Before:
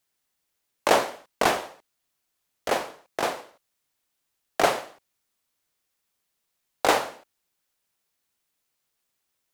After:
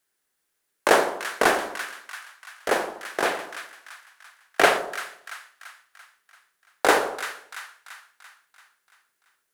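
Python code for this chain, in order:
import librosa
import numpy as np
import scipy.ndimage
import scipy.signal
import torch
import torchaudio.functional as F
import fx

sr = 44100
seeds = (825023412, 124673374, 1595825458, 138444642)

y = fx.graphic_eq_15(x, sr, hz=(100, 400, 1600, 10000), db=(-7, 6, 8, 5))
y = fx.echo_split(y, sr, split_hz=1200.0, low_ms=81, high_ms=339, feedback_pct=52, wet_db=-9.5)
y = fx.dynamic_eq(y, sr, hz=2700.0, q=1.1, threshold_db=-39.0, ratio=4.0, max_db=6, at=(3.25, 4.78))
y = y * 10.0 ** (-1.0 / 20.0)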